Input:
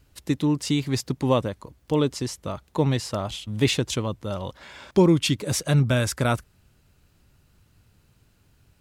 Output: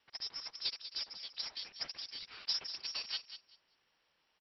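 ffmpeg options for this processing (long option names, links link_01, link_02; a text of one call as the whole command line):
ffmpeg -i in.wav -filter_complex "[0:a]aderivative,acrossover=split=520|1100[link_01][link_02][link_03];[link_03]acompressor=threshold=-52dB:ratio=5[link_04];[link_01][link_02][link_04]amix=inputs=3:normalize=0,asplit=4[link_05][link_06][link_07][link_08];[link_06]asetrate=22050,aresample=44100,atempo=2,volume=-9dB[link_09];[link_07]asetrate=55563,aresample=44100,atempo=0.793701,volume=-12dB[link_10];[link_08]asetrate=66075,aresample=44100,atempo=0.66742,volume=-11dB[link_11];[link_05][link_09][link_10][link_11]amix=inputs=4:normalize=0,aresample=8000,acrusher=bits=3:mode=log:mix=0:aa=0.000001,aresample=44100,asplit=2[link_12][link_13];[link_13]adelay=384,lowpass=frequency=1900:poles=1,volume=-10dB,asplit=2[link_14][link_15];[link_15]adelay=384,lowpass=frequency=1900:poles=1,volume=0.21,asplit=2[link_16][link_17];[link_17]adelay=384,lowpass=frequency=1900:poles=1,volume=0.21[link_18];[link_12][link_14][link_16][link_18]amix=inputs=4:normalize=0,lowpass=frequency=2500:width_type=q:width=0.5098,lowpass=frequency=2500:width_type=q:width=0.6013,lowpass=frequency=2500:width_type=q:width=0.9,lowpass=frequency=2500:width_type=q:width=2.563,afreqshift=-2900,asetrate=88200,aresample=44100,volume=6.5dB" out.wav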